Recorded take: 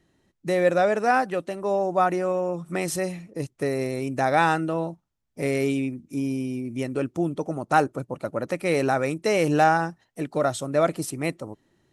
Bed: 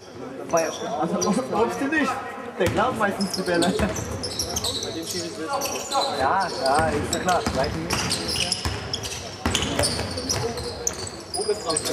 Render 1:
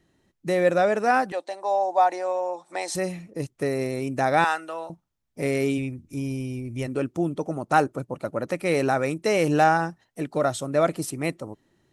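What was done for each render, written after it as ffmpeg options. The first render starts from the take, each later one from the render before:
ffmpeg -i in.wav -filter_complex "[0:a]asettb=1/sr,asplit=3[link_01][link_02][link_03];[link_01]atrim=end=1.324[link_04];[link_02]atrim=start=1.32:end=2.95,asetpts=PTS-STARTPTS,afade=type=in:duration=0.004:curve=qsin,afade=type=out:start_time=1.626:duration=0.004:curve=qsin,highpass=frequency=390:width=0.5412,highpass=frequency=390:width=1.3066,equalizer=frequency=410:width_type=q:width=4:gain=-9,equalizer=frequency=840:width_type=q:width=4:gain=10,equalizer=frequency=1300:width_type=q:width=4:gain=-9,equalizer=frequency=2800:width_type=q:width=4:gain=-6,equalizer=frequency=4100:width_type=q:width=4:gain=7,lowpass=frequency=9000:width=0.5412,lowpass=frequency=9000:width=1.3066[link_05];[link_03]atrim=start=2.946[link_06];[link_04][link_05]acrossfade=duration=0.004:curve1=hsin:curve2=qsin[link_07];[link_07][link_06]acrossfade=duration=0.004:curve1=qsin:curve2=hsin,asettb=1/sr,asplit=3[link_08][link_09][link_10];[link_08]atrim=end=4.444[link_11];[link_09]atrim=start=4.44:end=4.9,asetpts=PTS-STARTPTS,afade=type=in:duration=0.004:curve=qsin,afade=type=out:start_time=0.456:duration=0.004:curve=qsin,highpass=750[link_12];[link_10]atrim=start=4.896[link_13];[link_11][link_12]acrossfade=duration=0.004:curve1=hsin:curve2=qsin[link_14];[link_14][link_13]acrossfade=duration=0.004:curve1=qsin:curve2=hsin,asplit=3[link_15][link_16][link_17];[link_15]afade=type=out:start_time=5.77:duration=0.02[link_18];[link_16]asubboost=boost=8.5:cutoff=74,afade=type=in:start_time=5.77:duration=0.02,afade=type=out:start_time=6.86:duration=0.02[link_19];[link_17]afade=type=in:start_time=6.86:duration=0.02[link_20];[link_18][link_19][link_20]amix=inputs=3:normalize=0" out.wav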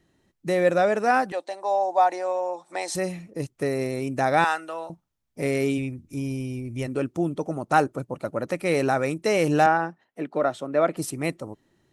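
ffmpeg -i in.wav -filter_complex "[0:a]asettb=1/sr,asplit=3[link_01][link_02][link_03];[link_01]atrim=end=9.664[link_04];[link_02]atrim=start=9.66:end=10.97,asetpts=PTS-STARTPTS,afade=type=in:duration=0.004:curve=qsin,afade=type=out:start_time=1.306:duration=0.004:curve=qsin,acrossover=split=170 3300:gain=0.0891 1 0.178[link_05][link_06][link_07];[link_05][link_06][link_07]amix=inputs=3:normalize=0[link_08];[link_03]atrim=start=10.966[link_09];[link_04][link_08]acrossfade=duration=0.004:curve1=hsin:curve2=qsin[link_10];[link_10][link_09]acrossfade=duration=0.004:curve1=qsin:curve2=hsin" out.wav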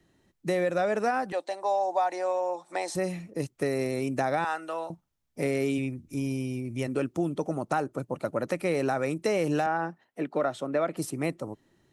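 ffmpeg -i in.wav -filter_complex "[0:a]alimiter=limit=-12dB:level=0:latency=1:release=293,acrossover=split=120|1400[link_01][link_02][link_03];[link_01]acompressor=threshold=-49dB:ratio=4[link_04];[link_02]acompressor=threshold=-24dB:ratio=4[link_05];[link_03]acompressor=threshold=-37dB:ratio=4[link_06];[link_04][link_05][link_06]amix=inputs=3:normalize=0" out.wav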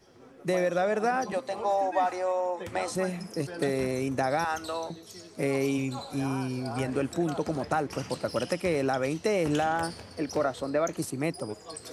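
ffmpeg -i in.wav -i bed.wav -filter_complex "[1:a]volume=-17.5dB[link_01];[0:a][link_01]amix=inputs=2:normalize=0" out.wav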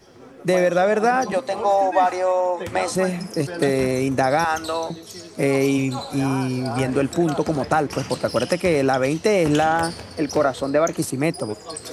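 ffmpeg -i in.wav -af "volume=8.5dB" out.wav

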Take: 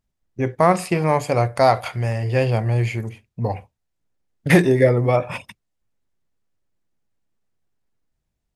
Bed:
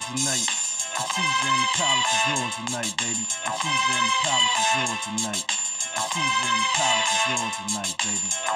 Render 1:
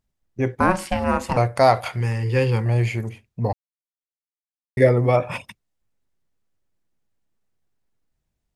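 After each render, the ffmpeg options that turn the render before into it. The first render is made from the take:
ffmpeg -i in.wav -filter_complex "[0:a]asettb=1/sr,asplit=3[link_01][link_02][link_03];[link_01]atrim=end=0.604[link_04];[link_02]atrim=start=0.6:end=1.37,asetpts=PTS-STARTPTS,afade=type=in:duration=0.004:curve=qsin,afade=type=out:start_time=0.766:duration=0.004:curve=qsin,aeval=exprs='val(0)*sin(2*PI*380*n/s)':channel_layout=same[link_05];[link_03]atrim=start=1.366[link_06];[link_04][link_05]acrossfade=duration=0.004:curve1=hsin:curve2=qsin[link_07];[link_07][link_06]acrossfade=duration=0.004:curve1=qsin:curve2=hsin,asettb=1/sr,asplit=3[link_08][link_09][link_10];[link_08]atrim=end=2.004[link_11];[link_09]atrim=start=2:end=2.66,asetpts=PTS-STARTPTS,afade=type=in:duration=0.004:curve=qsin,afade=type=out:start_time=0.656:duration=0.004:curve=qsin,asuperstop=centerf=660:order=8:qfactor=2.5[link_12];[link_10]atrim=start=2.656[link_13];[link_11][link_12]acrossfade=duration=0.004:curve1=hsin:curve2=qsin[link_14];[link_14][link_13]acrossfade=duration=0.004:curve1=qsin:curve2=hsin,asplit=3[link_15][link_16][link_17];[link_15]atrim=end=3.53,asetpts=PTS-STARTPTS,afade=type=out:start_time=3.526:duration=0.004:curve=hsin[link_18];[link_16]atrim=start=3.53:end=4.77,asetpts=PTS-STARTPTS,volume=0[link_19];[link_17]atrim=start=4.77,asetpts=PTS-STARTPTS,afade=type=in:duration=0.004:curve=hsin[link_20];[link_18][link_19][link_20]concat=n=3:v=0:a=1" out.wav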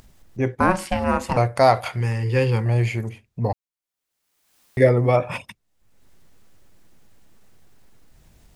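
ffmpeg -i in.wav -af "acompressor=mode=upward:threshold=-31dB:ratio=2.5" out.wav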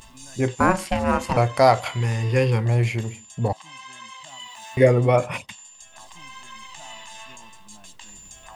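ffmpeg -i in.wav -i bed.wav -filter_complex "[1:a]volume=-19dB[link_01];[0:a][link_01]amix=inputs=2:normalize=0" out.wav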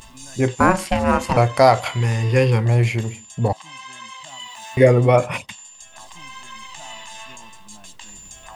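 ffmpeg -i in.wav -af "volume=3.5dB,alimiter=limit=-2dB:level=0:latency=1" out.wav

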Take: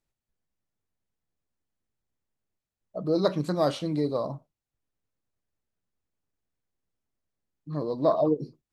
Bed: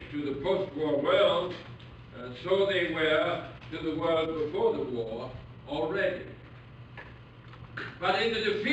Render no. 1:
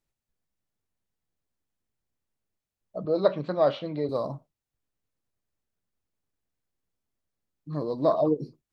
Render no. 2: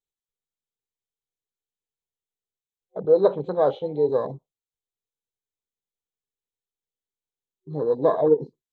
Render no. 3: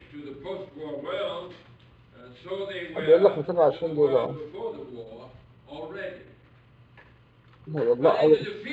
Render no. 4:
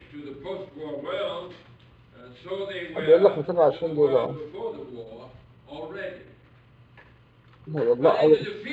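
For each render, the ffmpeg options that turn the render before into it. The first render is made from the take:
ffmpeg -i in.wav -filter_complex "[0:a]asettb=1/sr,asplit=3[link_01][link_02][link_03];[link_01]atrim=end=3.054[link_04];[link_02]atrim=start=3.05:end=4.09,asetpts=PTS-STARTPTS,afade=type=in:duration=0.004:curve=qsin,afade=type=out:start_time=1.036:duration=0.004:curve=qsin,highpass=120,equalizer=frequency=170:width_type=q:width=4:gain=-6,equalizer=frequency=310:width_type=q:width=4:gain=-6,equalizer=frequency=590:width_type=q:width=4:gain=5,lowpass=frequency=3700:width=0.5412,lowpass=frequency=3700:width=1.3066[link_05];[link_03]atrim=start=4.086[link_06];[link_04][link_05]acrossfade=duration=0.004:curve1=hsin:curve2=qsin[link_07];[link_07][link_06]acrossfade=duration=0.004:curve1=qsin:curve2=hsin" out.wav
ffmpeg -i in.wav -af "afwtdn=0.02,superequalizer=7b=3.16:9b=1.78:12b=1.58:13b=3.98:15b=3.55" out.wav
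ffmpeg -i in.wav -i bed.wav -filter_complex "[1:a]volume=-7dB[link_01];[0:a][link_01]amix=inputs=2:normalize=0" out.wav
ffmpeg -i in.wav -af "volume=1dB" out.wav

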